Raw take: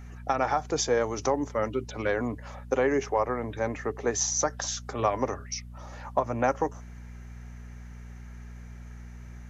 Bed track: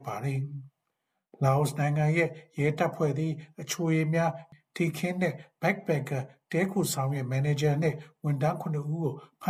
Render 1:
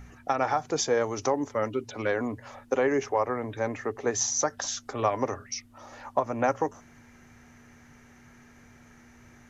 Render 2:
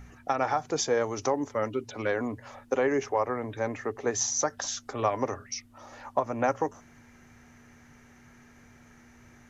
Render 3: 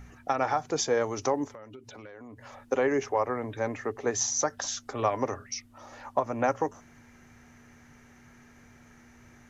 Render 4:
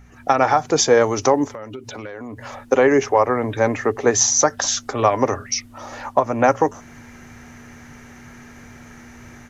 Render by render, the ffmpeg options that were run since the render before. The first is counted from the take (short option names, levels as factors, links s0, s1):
-af "bandreject=f=60:t=h:w=4,bandreject=f=120:t=h:w=4,bandreject=f=180:t=h:w=4"
-af "volume=0.891"
-filter_complex "[0:a]asettb=1/sr,asplit=3[s0][s1][s2];[s0]atrim=end=1.464[s3];[s1]atrim=start=1.46:end=2.66,asetpts=PTS-STARTPTS,afade=t=in:d=0.004:c=qsin,afade=t=out:st=1.196:d=0.004:c=qsin,acompressor=threshold=0.00794:ratio=12:attack=3.2:release=140:knee=1:detection=peak[s4];[s2]atrim=start=2.656[s5];[s3][s4]acrossfade=d=0.004:c1=hsin:c2=qsin[s6];[s6][s5]acrossfade=d=0.004:c1=qsin:c2=hsin"
-af "dynaudnorm=f=110:g=3:m=4.47"